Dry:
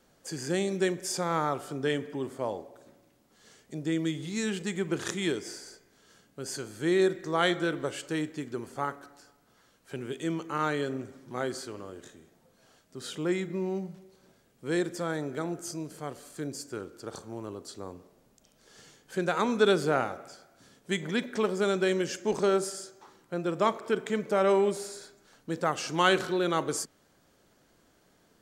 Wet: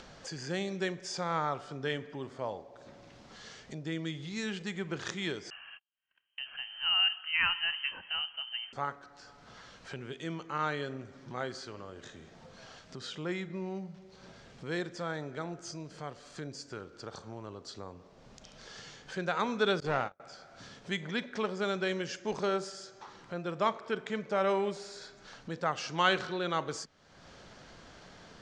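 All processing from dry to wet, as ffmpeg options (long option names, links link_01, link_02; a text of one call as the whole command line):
ffmpeg -i in.wav -filter_complex "[0:a]asettb=1/sr,asplit=3[link_01][link_02][link_03];[link_01]atrim=end=5.504[link_04];[link_02]atrim=start=5.5:end=8.73,asetpts=PTS-STARTPTS,afade=type=in:duration=0.004:curve=qsin,afade=type=out:start_time=3.226:duration=0.004:curve=qsin,asubboost=boost=9.5:cutoff=88,lowpass=frequency=2700:width_type=q:width=0.5098,lowpass=frequency=2700:width_type=q:width=0.6013,lowpass=frequency=2700:width_type=q:width=0.9,lowpass=frequency=2700:width_type=q:width=2.563,afreqshift=-3200,agate=range=-46dB:threshold=-57dB:ratio=16:release=100:detection=peak[link_05];[link_03]atrim=start=8.726[link_06];[link_04][link_05]acrossfade=duration=0.004:curve1=hsin:curve2=qsin[link_07];[link_07][link_06]acrossfade=duration=0.004:curve1=qsin:curve2=hsin,asettb=1/sr,asplit=3[link_08][link_09][link_10];[link_08]atrim=end=19.804[link_11];[link_09]atrim=start=19.8:end=20.2,asetpts=PTS-STARTPTS,afade=type=in:duration=0.004:curve=qsin,afade=type=out:start_time=0.396:duration=0.004:curve=qsin,agate=range=-32dB:threshold=-34dB:ratio=16:release=100:detection=peak,aeval=exprs='clip(val(0),-1,0.0473)':channel_layout=same[link_12];[link_10]atrim=start=20.196[link_13];[link_11][link_12]acrossfade=duration=0.004:curve1=hsin:curve2=qsin[link_14];[link_14][link_13]acrossfade=duration=0.004:curve1=qsin:curve2=hsin,lowpass=frequency=5900:width=0.5412,lowpass=frequency=5900:width=1.3066,equalizer=frequency=320:width_type=o:width=1.2:gain=-7,acompressor=mode=upward:threshold=-36dB:ratio=2.5,volume=-2dB" out.wav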